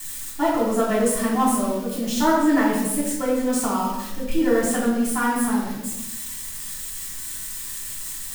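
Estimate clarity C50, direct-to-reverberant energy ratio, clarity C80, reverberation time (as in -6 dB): 1.0 dB, -8.0 dB, 4.0 dB, 0.95 s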